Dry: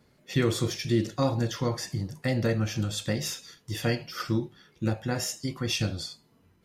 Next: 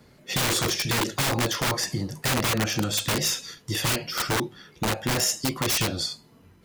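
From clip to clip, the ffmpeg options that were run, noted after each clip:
-filter_complex "[0:a]acrossover=split=220|5900[a][b][c];[a]acompressor=threshold=-39dB:ratio=6[d];[b]aeval=exprs='(mod(25.1*val(0)+1,2)-1)/25.1':c=same[e];[d][e][c]amix=inputs=3:normalize=0,volume=8.5dB"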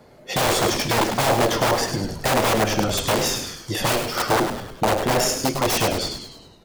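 -filter_complex "[0:a]equalizer=f=670:t=o:w=1.5:g=12,asplit=2[a][b];[b]asplit=6[c][d][e][f][g][h];[c]adelay=102,afreqshift=-120,volume=-7dB[i];[d]adelay=204,afreqshift=-240,volume=-13dB[j];[e]adelay=306,afreqshift=-360,volume=-19dB[k];[f]adelay=408,afreqshift=-480,volume=-25.1dB[l];[g]adelay=510,afreqshift=-600,volume=-31.1dB[m];[h]adelay=612,afreqshift=-720,volume=-37.1dB[n];[i][j][k][l][m][n]amix=inputs=6:normalize=0[o];[a][o]amix=inputs=2:normalize=0"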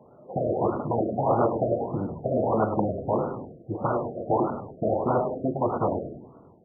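-af "highpass=98,afftfilt=real='re*lt(b*sr/1024,690*pow(1500/690,0.5+0.5*sin(2*PI*1.6*pts/sr)))':imag='im*lt(b*sr/1024,690*pow(1500/690,0.5+0.5*sin(2*PI*1.6*pts/sr)))':win_size=1024:overlap=0.75,volume=-2.5dB"

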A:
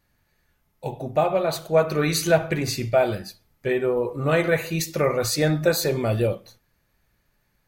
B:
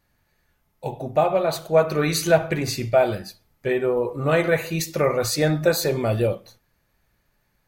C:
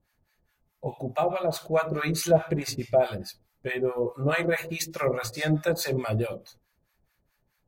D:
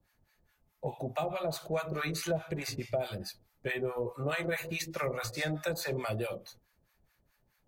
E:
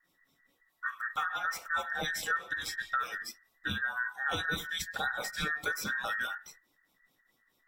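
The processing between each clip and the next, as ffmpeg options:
-af "equalizer=f=770:t=o:w=1.4:g=2"
-filter_complex "[0:a]acrossover=split=770[a][b];[a]aeval=exprs='val(0)*(1-1/2+1/2*cos(2*PI*4.7*n/s))':c=same[c];[b]aeval=exprs='val(0)*(1-1/2-1/2*cos(2*PI*4.7*n/s))':c=same[d];[c][d]amix=inputs=2:normalize=0"
-filter_complex "[0:a]acrossover=split=160|460|2900[a][b][c][d];[a]acompressor=threshold=-40dB:ratio=4[e];[b]acompressor=threshold=-43dB:ratio=4[f];[c]acompressor=threshold=-34dB:ratio=4[g];[d]acompressor=threshold=-40dB:ratio=4[h];[e][f][g][h]amix=inputs=4:normalize=0"
-af "afftfilt=real='real(if(between(b,1,1012),(2*floor((b-1)/92)+1)*92-b,b),0)':imag='imag(if(between(b,1,1012),(2*floor((b-1)/92)+1)*92-b,b),0)*if(between(b,1,1012),-1,1)':win_size=2048:overlap=0.75"

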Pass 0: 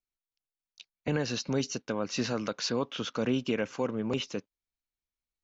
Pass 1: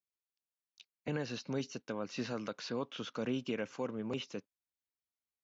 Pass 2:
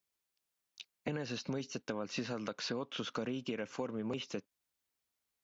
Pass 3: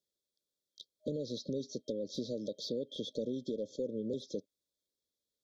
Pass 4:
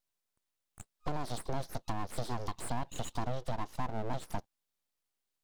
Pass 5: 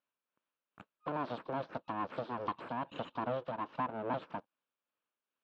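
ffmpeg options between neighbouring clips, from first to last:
-filter_complex "[0:a]acrossover=split=4200[a][b];[b]acompressor=threshold=-45dB:ratio=4:attack=1:release=60[c];[a][c]amix=inputs=2:normalize=0,highpass=86,volume=-7dB"
-af "acompressor=threshold=-43dB:ratio=6,volume=8dB"
-filter_complex "[0:a]asplit=2[a][b];[b]highpass=f=720:p=1,volume=11dB,asoftclip=type=tanh:threshold=-23dB[c];[a][c]amix=inputs=2:normalize=0,lowpass=f=1.7k:p=1,volume=-6dB,afftfilt=real='re*(1-between(b*sr/4096,620,3200))':imag='im*(1-between(b*sr/4096,620,3200))':win_size=4096:overlap=0.75,volume=2dB"
-af "aeval=exprs='abs(val(0))':c=same,volume=4dB"
-af "tremolo=f=2.4:d=0.44,highpass=290,equalizer=f=390:t=q:w=4:g=-6,equalizer=f=750:t=q:w=4:g=-8,equalizer=f=2k:t=q:w=4:g=-10,lowpass=f=2.6k:w=0.5412,lowpass=f=2.6k:w=1.3066,volume=8dB"

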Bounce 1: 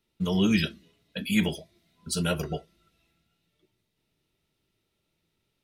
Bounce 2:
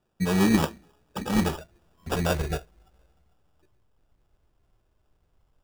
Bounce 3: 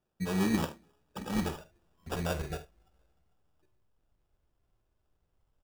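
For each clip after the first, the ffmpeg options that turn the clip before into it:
-af "asubboost=boost=11:cutoff=61,acrusher=samples=21:mix=1:aa=0.000001,volume=3dB"
-af "aecho=1:1:48|75:0.211|0.141,volume=-8dB"

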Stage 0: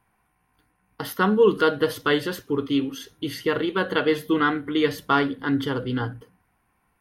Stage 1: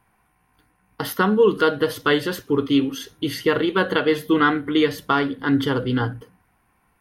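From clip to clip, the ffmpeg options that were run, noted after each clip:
-af "alimiter=limit=-12dB:level=0:latency=1:release=433,volume=4.5dB"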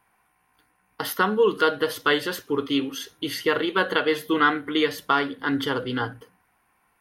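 -af "lowshelf=f=290:g=-12"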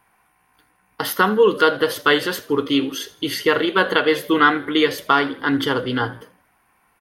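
-filter_complex "[0:a]asplit=4[a][b][c][d];[b]adelay=80,afreqshift=55,volume=-20dB[e];[c]adelay=160,afreqshift=110,volume=-27.1dB[f];[d]adelay=240,afreqshift=165,volume=-34.3dB[g];[a][e][f][g]amix=inputs=4:normalize=0,volume=5dB"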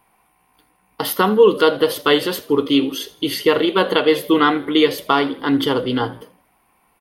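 -af "equalizer=f=100:t=o:w=0.67:g=-6,equalizer=f=1.6k:t=o:w=0.67:g=-10,equalizer=f=6.3k:t=o:w=0.67:g=-5,volume=3.5dB"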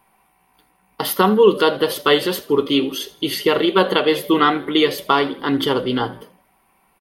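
-af "aecho=1:1:5.2:0.31"

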